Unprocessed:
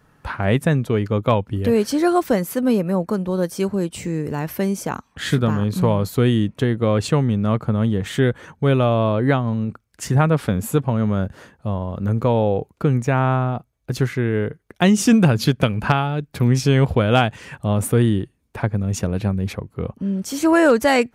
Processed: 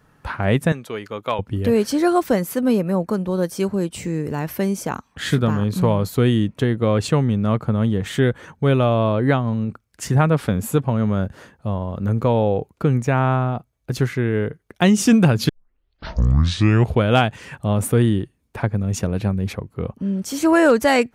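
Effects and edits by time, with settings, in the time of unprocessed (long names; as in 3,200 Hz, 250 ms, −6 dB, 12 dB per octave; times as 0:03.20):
0:00.72–0:01.39: high-pass filter 950 Hz 6 dB per octave
0:15.49: tape start 1.52 s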